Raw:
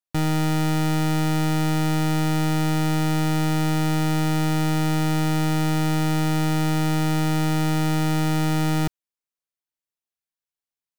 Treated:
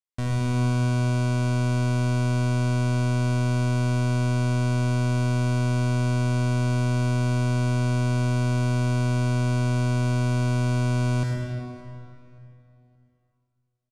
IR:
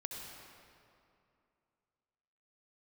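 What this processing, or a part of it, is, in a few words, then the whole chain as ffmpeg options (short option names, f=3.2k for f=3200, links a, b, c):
slowed and reverbed: -filter_complex "[0:a]asetrate=34839,aresample=44100[a];[1:a]atrim=start_sample=2205[b];[a][b]afir=irnorm=-1:irlink=0,lowpass=f=10k:w=0.5412,lowpass=f=10k:w=1.3066,equalizer=f=78:t=o:w=2.3:g=4,asplit=2[c][d];[d]adelay=574,lowpass=f=3.7k:p=1,volume=-19dB,asplit=2[e][f];[f]adelay=574,lowpass=f=3.7k:p=1,volume=0.32,asplit=2[g][h];[h]adelay=574,lowpass=f=3.7k:p=1,volume=0.32[i];[c][e][g][i]amix=inputs=4:normalize=0,volume=-3dB"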